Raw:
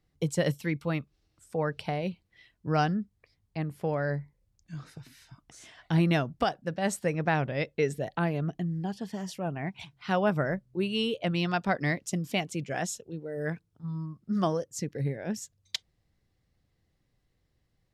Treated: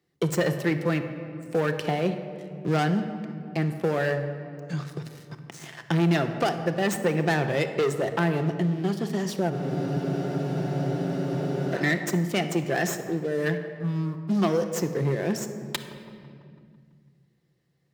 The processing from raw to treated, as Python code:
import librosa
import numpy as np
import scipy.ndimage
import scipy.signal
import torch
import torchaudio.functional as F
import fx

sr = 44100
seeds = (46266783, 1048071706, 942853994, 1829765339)

y = fx.tracing_dist(x, sr, depth_ms=0.1)
y = fx.small_body(y, sr, hz=(390.0, 1800.0), ring_ms=45, db=9)
y = fx.leveller(y, sr, passes=3)
y = scipy.signal.sosfilt(scipy.signal.butter(2, 150.0, 'highpass', fs=sr, output='sos'), y)
y = fx.echo_wet_bandpass(y, sr, ms=166, feedback_pct=52, hz=640.0, wet_db=-16.5)
y = fx.room_shoebox(y, sr, seeds[0], volume_m3=2100.0, walls='mixed', distance_m=0.8)
y = fx.spec_freeze(y, sr, seeds[1], at_s=9.52, hold_s=2.21)
y = fx.band_squash(y, sr, depth_pct=40)
y = y * librosa.db_to_amplitude(-5.0)